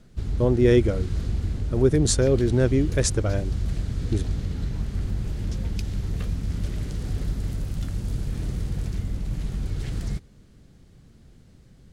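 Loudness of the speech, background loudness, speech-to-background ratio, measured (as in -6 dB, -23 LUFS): -23.0 LUFS, -30.0 LUFS, 7.0 dB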